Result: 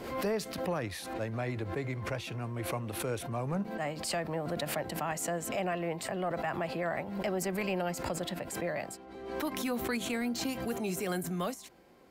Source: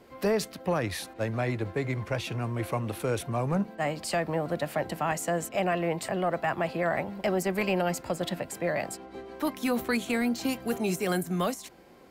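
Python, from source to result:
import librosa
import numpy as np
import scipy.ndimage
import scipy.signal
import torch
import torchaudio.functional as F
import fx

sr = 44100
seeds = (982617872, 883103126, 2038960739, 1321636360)

y = fx.pre_swell(x, sr, db_per_s=56.0)
y = y * 10.0 ** (-6.0 / 20.0)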